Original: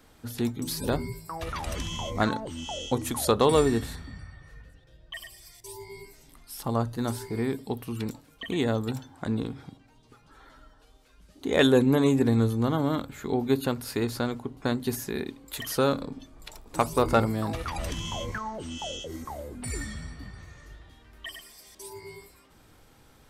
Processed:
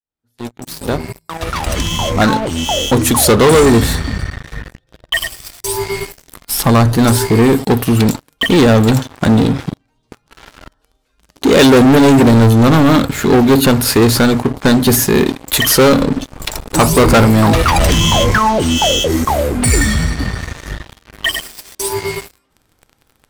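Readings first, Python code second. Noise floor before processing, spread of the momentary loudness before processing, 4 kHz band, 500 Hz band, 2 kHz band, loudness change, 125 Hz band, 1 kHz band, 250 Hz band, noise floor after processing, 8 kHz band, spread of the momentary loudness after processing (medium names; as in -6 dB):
-58 dBFS, 20 LU, +19.0 dB, +15.0 dB, +18.5 dB, +16.0 dB, +17.5 dB, +16.0 dB, +16.5 dB, -63 dBFS, +20.5 dB, 17 LU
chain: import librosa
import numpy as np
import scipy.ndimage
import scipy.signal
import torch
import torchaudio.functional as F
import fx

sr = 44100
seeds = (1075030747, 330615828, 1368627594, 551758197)

y = fx.fade_in_head(x, sr, length_s=4.56)
y = fx.dynamic_eq(y, sr, hz=170.0, q=7.1, threshold_db=-47.0, ratio=4.0, max_db=3)
y = fx.leveller(y, sr, passes=5)
y = y * 10.0 ** (5.5 / 20.0)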